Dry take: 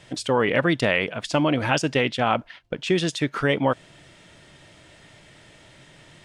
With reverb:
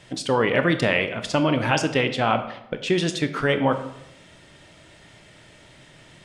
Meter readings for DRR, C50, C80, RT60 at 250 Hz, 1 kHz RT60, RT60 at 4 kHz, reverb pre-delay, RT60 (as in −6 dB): 8.0 dB, 10.5 dB, 13.0 dB, 0.95 s, 0.75 s, 0.50 s, 20 ms, 0.80 s